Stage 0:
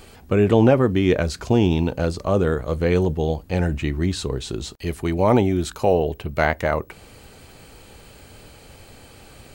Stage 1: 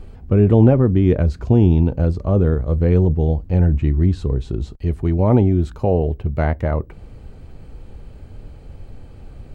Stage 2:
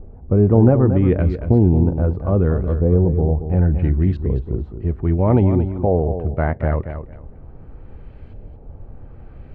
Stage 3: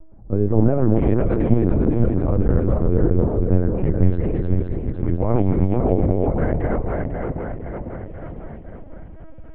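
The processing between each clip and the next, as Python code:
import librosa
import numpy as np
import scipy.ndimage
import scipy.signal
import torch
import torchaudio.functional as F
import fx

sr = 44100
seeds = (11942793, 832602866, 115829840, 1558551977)

y1 = fx.tilt_eq(x, sr, slope=-4.0)
y1 = y1 * 10.0 ** (-5.0 / 20.0)
y2 = fx.filter_lfo_lowpass(y1, sr, shape='saw_up', hz=0.72, low_hz=640.0, high_hz=2900.0, q=1.1)
y2 = fx.echo_feedback(y2, sr, ms=228, feedback_pct=20, wet_db=-9.5)
y2 = y2 * 10.0 ** (-1.0 / 20.0)
y3 = fx.reverse_delay_fb(y2, sr, ms=253, feedback_pct=76, wet_db=-2.5)
y3 = fx.lpc_vocoder(y3, sr, seeds[0], excitation='pitch_kept', order=10)
y3 = y3 * 10.0 ** (-4.5 / 20.0)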